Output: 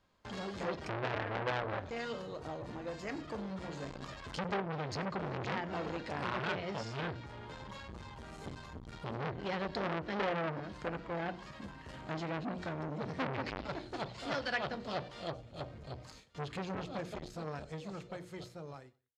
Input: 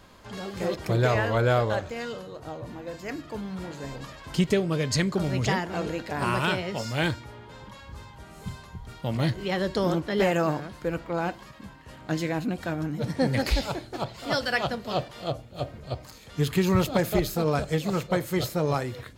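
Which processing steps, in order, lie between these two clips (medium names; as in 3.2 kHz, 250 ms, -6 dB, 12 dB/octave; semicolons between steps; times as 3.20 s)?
fade out at the end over 5.52 s; low-pass that closes with the level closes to 2.3 kHz, closed at -20.5 dBFS; hum notches 60/120/180/240/300/360/420/480 Hz; gate with hold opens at -41 dBFS; treble shelf 5.6 kHz +5.5 dB; in parallel at +2 dB: compression, threshold -40 dBFS, peak gain reduction 20 dB; on the sum: distance through air 73 m; on a send: feedback delay 93 ms, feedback 29%, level -24 dB; on the sum: transformer saturation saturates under 2.3 kHz; trim -6.5 dB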